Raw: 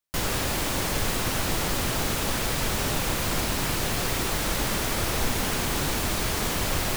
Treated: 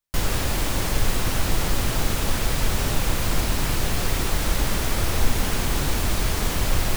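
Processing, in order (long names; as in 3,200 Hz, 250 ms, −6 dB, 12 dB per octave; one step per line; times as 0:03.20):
low-shelf EQ 80 Hz +11.5 dB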